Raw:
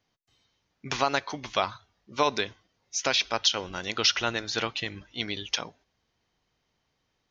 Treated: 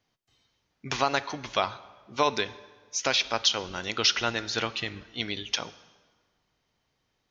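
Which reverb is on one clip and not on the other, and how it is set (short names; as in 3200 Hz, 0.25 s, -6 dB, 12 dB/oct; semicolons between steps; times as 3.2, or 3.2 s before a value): plate-style reverb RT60 1.5 s, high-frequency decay 0.75×, DRR 15.5 dB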